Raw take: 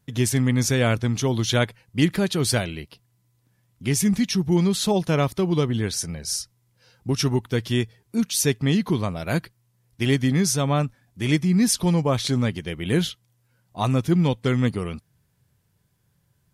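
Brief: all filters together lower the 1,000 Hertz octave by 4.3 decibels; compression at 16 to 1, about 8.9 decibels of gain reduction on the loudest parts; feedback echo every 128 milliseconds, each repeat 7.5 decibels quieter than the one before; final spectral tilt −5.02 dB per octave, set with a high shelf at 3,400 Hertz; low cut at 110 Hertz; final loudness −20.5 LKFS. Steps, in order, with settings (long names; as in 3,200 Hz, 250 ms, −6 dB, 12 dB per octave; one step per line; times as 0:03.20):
high-pass filter 110 Hz
parametric band 1,000 Hz −5.5 dB
high-shelf EQ 3,400 Hz −4.5 dB
downward compressor 16 to 1, threshold −24 dBFS
repeating echo 128 ms, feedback 42%, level −7.5 dB
level +9 dB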